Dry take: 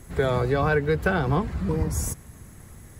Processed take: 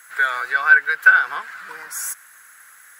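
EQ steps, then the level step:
high-pass with resonance 1,500 Hz, resonance Q 6.3
high-shelf EQ 12,000 Hz +10.5 dB
+1.5 dB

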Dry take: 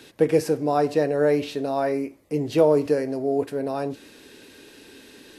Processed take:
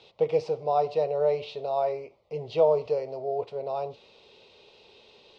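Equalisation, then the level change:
low-pass filter 4,100 Hz 24 dB per octave
low-shelf EQ 220 Hz −9 dB
phaser with its sweep stopped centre 690 Hz, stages 4
0.0 dB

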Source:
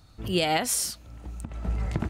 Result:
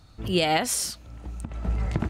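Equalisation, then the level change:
high-shelf EQ 11,000 Hz −7.5 dB
+2.0 dB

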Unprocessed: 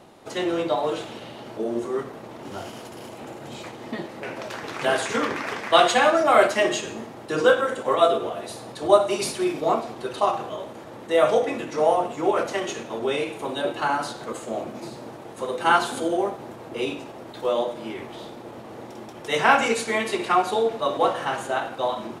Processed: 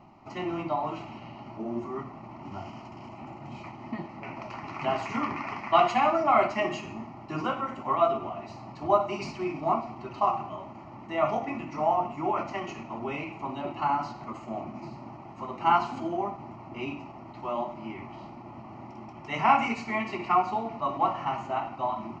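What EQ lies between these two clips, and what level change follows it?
high-frequency loss of the air 62 metres
head-to-tape spacing loss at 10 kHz 21 dB
phaser with its sweep stopped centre 2,400 Hz, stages 8
+1.5 dB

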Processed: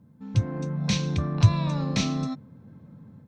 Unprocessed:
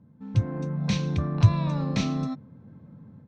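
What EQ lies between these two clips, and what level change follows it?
high-shelf EQ 3,700 Hz +9 dB
0.0 dB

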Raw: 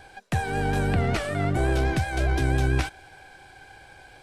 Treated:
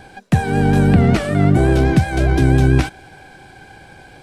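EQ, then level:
parametric band 200 Hz +11.5 dB 1.7 octaves
+5.0 dB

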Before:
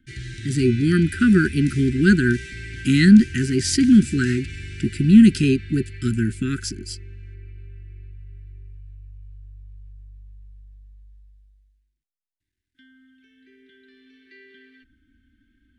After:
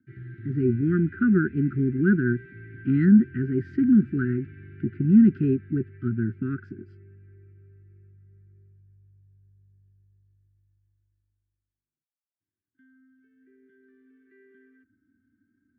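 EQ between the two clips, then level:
Chebyshev band-pass filter 110–1,400 Hz, order 3
−4.0 dB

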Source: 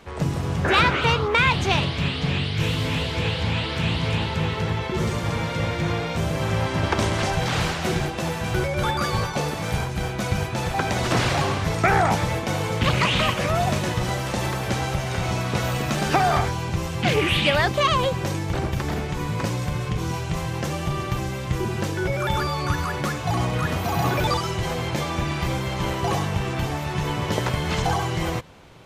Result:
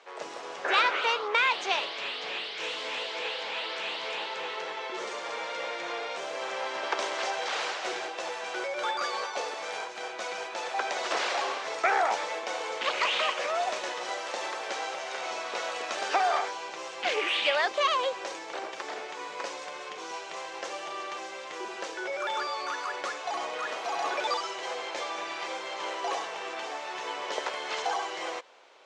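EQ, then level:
high-pass filter 450 Hz 24 dB per octave
low-pass filter 7,300 Hz 24 dB per octave
−5.0 dB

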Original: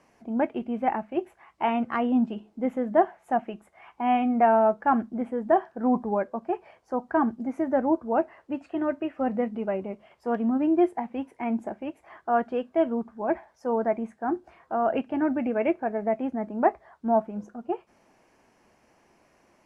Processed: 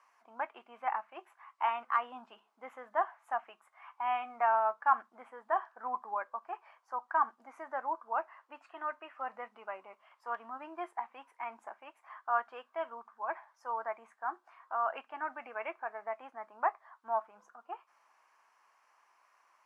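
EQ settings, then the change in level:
high-pass with resonance 1,100 Hz, resonance Q 3.5
−8.0 dB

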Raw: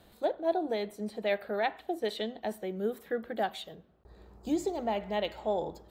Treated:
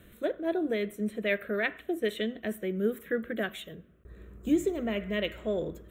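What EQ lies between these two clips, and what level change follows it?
phaser with its sweep stopped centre 2,000 Hz, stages 4
+6.5 dB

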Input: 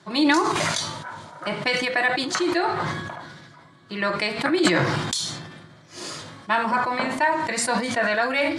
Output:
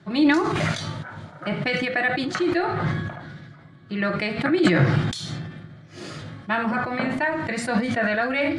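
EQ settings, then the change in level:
bass and treble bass +12 dB, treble −12 dB
low-shelf EQ 360 Hz −3.5 dB
parametric band 990 Hz −12 dB 0.22 octaves
0.0 dB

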